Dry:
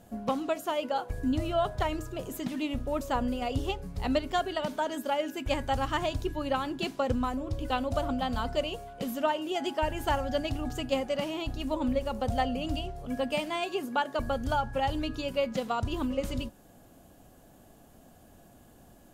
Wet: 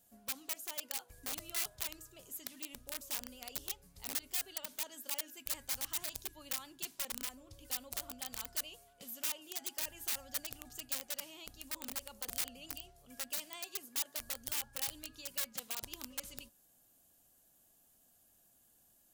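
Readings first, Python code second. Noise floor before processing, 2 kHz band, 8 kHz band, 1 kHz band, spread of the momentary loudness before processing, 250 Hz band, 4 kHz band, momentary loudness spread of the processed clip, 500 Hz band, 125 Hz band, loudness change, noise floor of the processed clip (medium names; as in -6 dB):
-56 dBFS, -10.0 dB, +9.0 dB, -22.0 dB, 5 LU, -24.0 dB, -5.5 dB, 9 LU, -24.5 dB, -25.5 dB, -8.5 dB, -69 dBFS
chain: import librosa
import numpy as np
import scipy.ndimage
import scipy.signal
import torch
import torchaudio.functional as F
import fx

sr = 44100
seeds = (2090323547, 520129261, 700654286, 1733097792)

y = fx.vibrato(x, sr, rate_hz=11.0, depth_cents=30.0)
y = (np.mod(10.0 ** (22.5 / 20.0) * y + 1.0, 2.0) - 1.0) / 10.0 ** (22.5 / 20.0)
y = librosa.effects.preemphasis(y, coef=0.9, zi=[0.0])
y = y * 10.0 ** (-4.0 / 20.0)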